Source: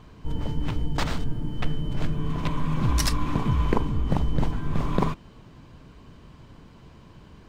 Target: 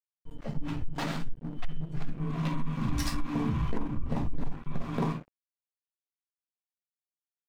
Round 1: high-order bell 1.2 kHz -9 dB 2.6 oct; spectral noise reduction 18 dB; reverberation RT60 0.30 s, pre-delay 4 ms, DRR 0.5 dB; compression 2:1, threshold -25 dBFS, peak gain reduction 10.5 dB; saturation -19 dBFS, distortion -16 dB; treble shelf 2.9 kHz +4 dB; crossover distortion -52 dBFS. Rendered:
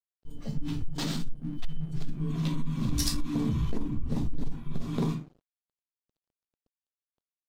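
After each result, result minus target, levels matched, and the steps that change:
1 kHz band -8.0 dB; crossover distortion: distortion -11 dB; 8 kHz band +6.5 dB
remove: high-order bell 1.2 kHz -9 dB 2.6 oct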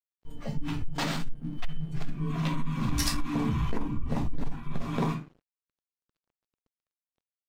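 crossover distortion: distortion -11 dB; 8 kHz band +6.0 dB
change: crossover distortion -40.5 dBFS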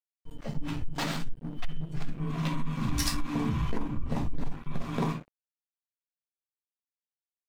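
8 kHz band +6.5 dB
change: treble shelf 2.9 kHz -4 dB

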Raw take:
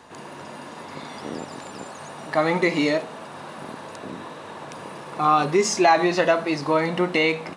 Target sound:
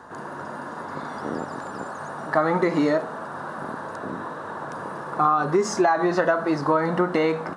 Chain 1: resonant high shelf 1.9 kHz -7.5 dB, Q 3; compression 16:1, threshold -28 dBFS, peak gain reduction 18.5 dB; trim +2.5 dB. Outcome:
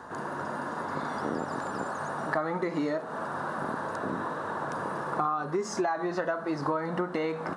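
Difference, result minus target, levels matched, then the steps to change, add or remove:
compression: peak gain reduction +9.5 dB
change: compression 16:1, threshold -18 dBFS, peak gain reduction 9 dB

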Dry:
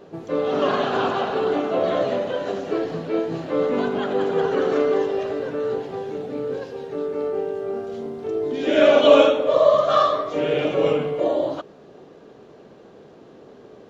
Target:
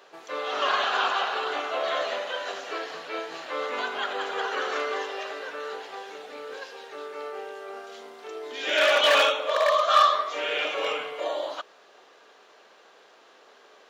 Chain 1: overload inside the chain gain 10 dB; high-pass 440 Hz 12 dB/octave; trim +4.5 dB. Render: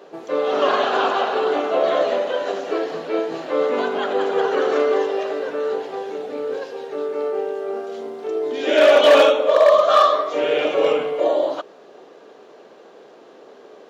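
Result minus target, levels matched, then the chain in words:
500 Hz band +5.5 dB
overload inside the chain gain 10 dB; high-pass 1.2 kHz 12 dB/octave; trim +4.5 dB

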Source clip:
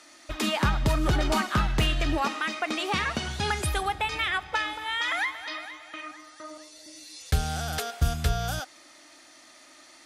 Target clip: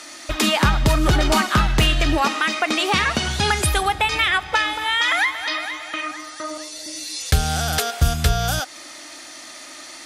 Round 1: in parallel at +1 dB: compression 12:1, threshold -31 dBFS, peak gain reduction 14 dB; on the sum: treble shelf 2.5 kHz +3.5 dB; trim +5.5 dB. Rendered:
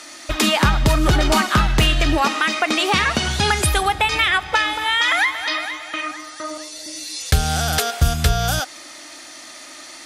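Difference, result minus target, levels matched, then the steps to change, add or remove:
compression: peak gain reduction -5.5 dB
change: compression 12:1, threshold -37 dBFS, peak gain reduction 19.5 dB

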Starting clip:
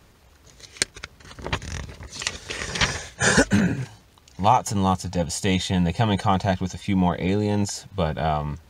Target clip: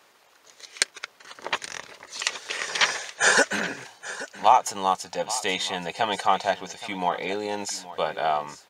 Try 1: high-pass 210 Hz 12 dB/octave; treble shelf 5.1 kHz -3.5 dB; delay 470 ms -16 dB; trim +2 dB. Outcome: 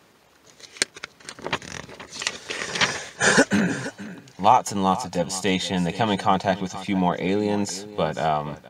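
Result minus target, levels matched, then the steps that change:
250 Hz band +11.0 dB; echo 354 ms early
change: high-pass 560 Hz 12 dB/octave; change: delay 824 ms -16 dB

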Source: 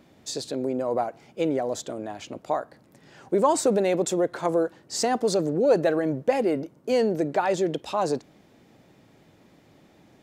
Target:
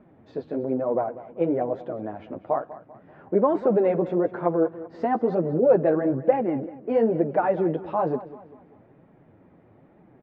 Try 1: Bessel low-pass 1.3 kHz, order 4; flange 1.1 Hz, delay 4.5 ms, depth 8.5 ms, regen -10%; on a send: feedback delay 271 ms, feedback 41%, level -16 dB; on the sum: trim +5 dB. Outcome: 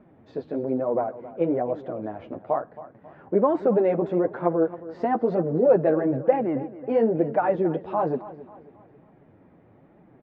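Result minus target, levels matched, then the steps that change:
echo 76 ms late
change: feedback delay 195 ms, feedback 41%, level -16 dB

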